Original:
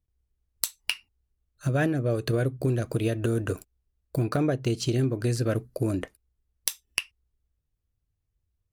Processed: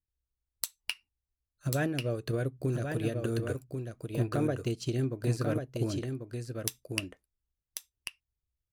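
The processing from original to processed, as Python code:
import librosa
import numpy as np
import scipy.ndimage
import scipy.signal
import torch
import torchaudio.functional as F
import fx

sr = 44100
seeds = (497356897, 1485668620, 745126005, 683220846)

y = x + 10.0 ** (-4.0 / 20.0) * np.pad(x, (int(1091 * sr / 1000.0), 0))[:len(x)]
y = fx.upward_expand(y, sr, threshold_db=-37.0, expansion=1.5)
y = y * librosa.db_to_amplitude(-4.0)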